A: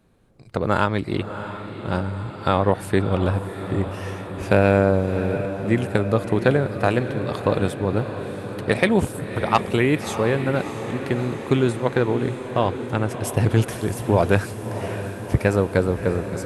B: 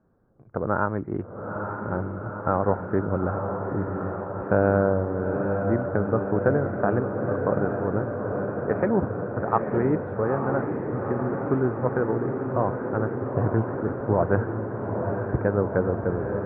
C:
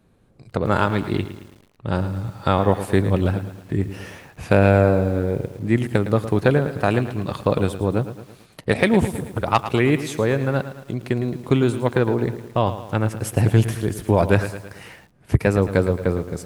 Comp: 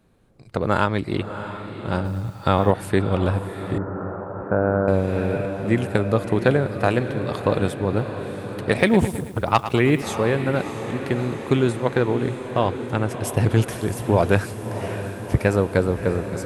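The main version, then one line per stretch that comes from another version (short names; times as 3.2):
A
2.05–2.71 from C
3.78–4.88 from B
8.78–10.02 from C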